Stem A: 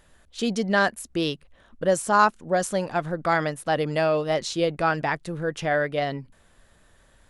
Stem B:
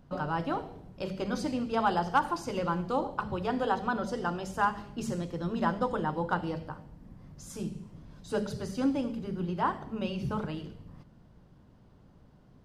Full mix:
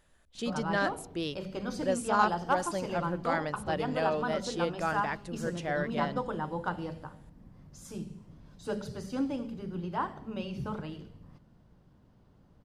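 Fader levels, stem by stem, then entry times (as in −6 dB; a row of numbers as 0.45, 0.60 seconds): −9.0, −3.5 decibels; 0.00, 0.35 seconds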